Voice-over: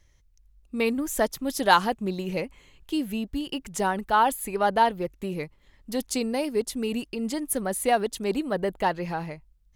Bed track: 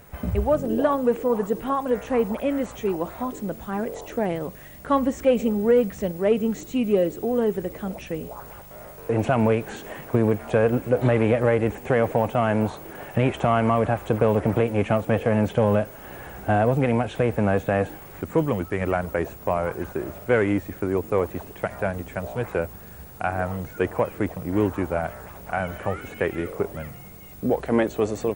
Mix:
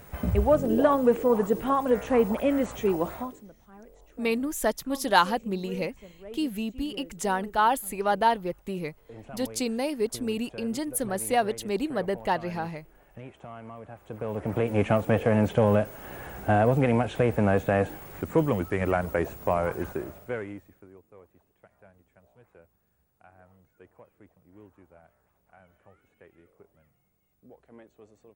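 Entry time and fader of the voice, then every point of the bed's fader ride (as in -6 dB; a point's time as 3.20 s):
3.45 s, -1.5 dB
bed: 3.14 s 0 dB
3.52 s -22.5 dB
13.87 s -22.5 dB
14.76 s -1.5 dB
19.88 s -1.5 dB
21.04 s -30 dB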